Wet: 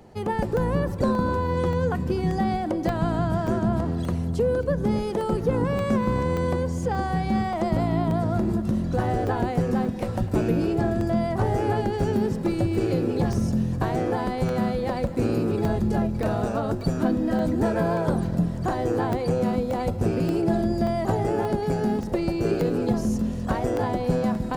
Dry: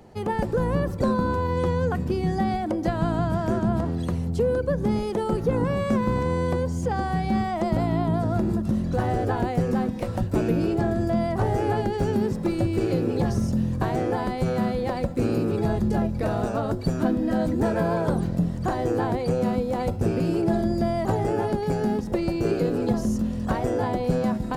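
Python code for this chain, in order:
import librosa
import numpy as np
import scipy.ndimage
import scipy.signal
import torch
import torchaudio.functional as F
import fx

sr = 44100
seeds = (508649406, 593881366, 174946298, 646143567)

y = fx.echo_feedback(x, sr, ms=254, feedback_pct=58, wet_db=-17.0)
y = fx.buffer_crackle(y, sr, first_s=0.57, period_s=0.58, block=64, kind='zero')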